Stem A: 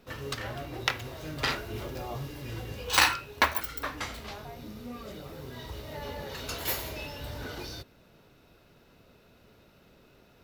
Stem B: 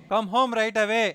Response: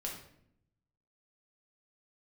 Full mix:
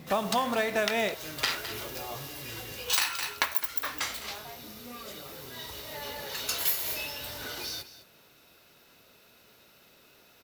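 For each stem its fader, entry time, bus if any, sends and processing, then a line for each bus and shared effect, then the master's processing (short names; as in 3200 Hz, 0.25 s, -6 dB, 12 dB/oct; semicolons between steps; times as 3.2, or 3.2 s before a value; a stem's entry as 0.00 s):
+0.5 dB, 0.00 s, no send, echo send -15 dB, tilt +3 dB/oct
-2.0 dB, 0.00 s, send -5 dB, no echo send, dry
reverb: on, RT60 0.70 s, pre-delay 5 ms
echo: echo 0.209 s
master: modulation noise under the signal 20 dB; compressor 6:1, threshold -24 dBFS, peak gain reduction 12.5 dB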